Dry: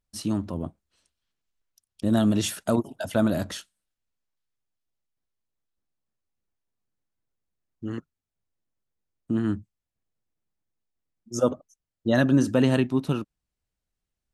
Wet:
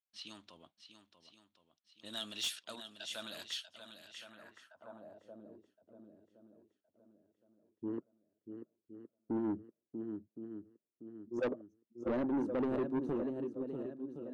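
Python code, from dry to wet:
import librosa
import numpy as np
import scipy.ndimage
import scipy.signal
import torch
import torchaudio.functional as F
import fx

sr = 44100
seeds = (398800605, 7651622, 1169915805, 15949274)

p1 = x * (1.0 - 0.3 / 2.0 + 0.3 / 2.0 * np.cos(2.0 * np.pi * 0.52 * (np.arange(len(x)) / sr)))
p2 = fx.env_lowpass(p1, sr, base_hz=1900.0, full_db=-23.0)
p3 = fx.high_shelf(p2, sr, hz=8100.0, db=11.5)
p4 = p3 + fx.echo_swing(p3, sr, ms=1067, ratio=1.5, feedback_pct=35, wet_db=-10, dry=0)
p5 = fx.filter_sweep_bandpass(p4, sr, from_hz=3400.0, to_hz=390.0, start_s=4.02, end_s=5.49, q=2.1)
y = 10.0 ** (-29.5 / 20.0) * np.tanh(p5 / 10.0 ** (-29.5 / 20.0))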